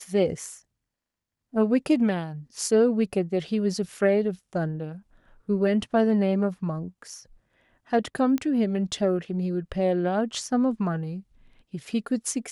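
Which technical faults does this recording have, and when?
0:08.38: click −16 dBFS

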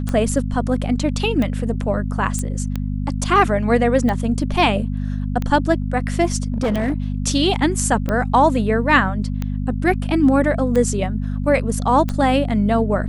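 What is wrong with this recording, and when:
mains hum 50 Hz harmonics 5 −23 dBFS
scratch tick 45 rpm −11 dBFS
0:02.39: click −12 dBFS
0:06.52–0:06.94: clipping −15.5 dBFS

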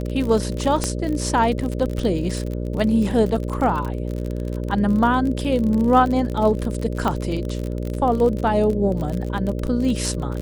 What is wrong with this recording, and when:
mains buzz 60 Hz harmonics 10 −26 dBFS
surface crackle 41 per second −25 dBFS
0:00.84: click −7 dBFS
0:07.08: click −10 dBFS

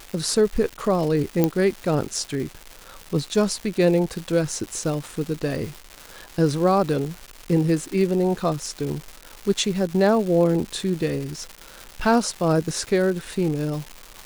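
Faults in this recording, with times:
surface crackle 410 per second −29 dBFS
0:01.44: click −6 dBFS

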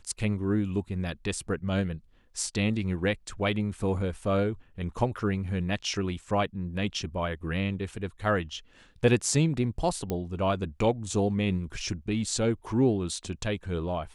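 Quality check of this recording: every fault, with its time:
0:10.10: click −17 dBFS

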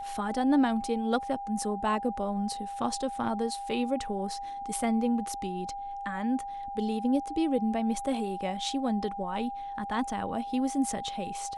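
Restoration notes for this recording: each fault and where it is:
whistle 800 Hz −35 dBFS

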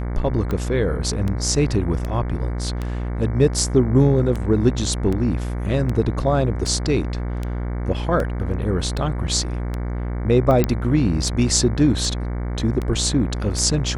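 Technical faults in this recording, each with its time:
mains buzz 60 Hz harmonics 38 −25 dBFS
scratch tick 78 rpm −14 dBFS
0:10.64: click −5 dBFS

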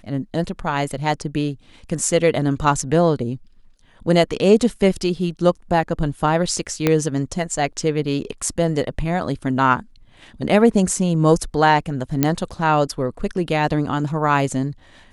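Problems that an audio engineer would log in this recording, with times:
0:06.87: click −3 dBFS
0:12.23: click −2 dBFS

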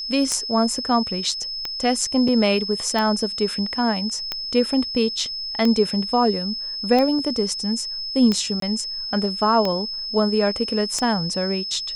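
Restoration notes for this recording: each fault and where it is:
scratch tick 45 rpm −10 dBFS
whistle 5,200 Hz −27 dBFS
0:02.28: drop-out 3.2 ms
0:08.60–0:08.62: drop-out 23 ms

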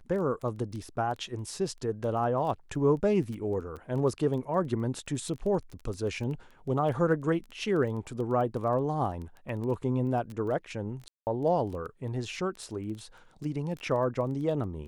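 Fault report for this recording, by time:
surface crackle 11 per second −35 dBFS
0:11.08–0:11.27: drop-out 189 ms

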